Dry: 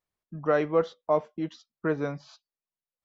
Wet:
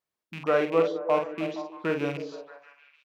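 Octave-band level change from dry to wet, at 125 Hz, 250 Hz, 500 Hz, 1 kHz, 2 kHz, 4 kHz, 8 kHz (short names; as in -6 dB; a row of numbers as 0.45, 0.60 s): -2.5 dB, +0.5 dB, +1.5 dB, +1.5 dB, +3.0 dB, +6.0 dB, n/a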